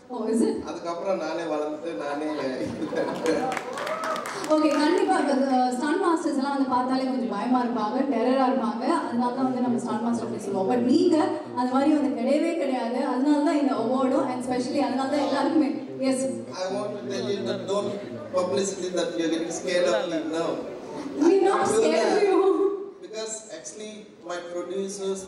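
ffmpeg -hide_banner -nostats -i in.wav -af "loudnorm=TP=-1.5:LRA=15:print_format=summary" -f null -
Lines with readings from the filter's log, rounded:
Input Integrated:    -25.3 LUFS
Input True Peak:      -9.3 dBTP
Input LRA:             4.9 LU
Input Threshold:     -35.5 LUFS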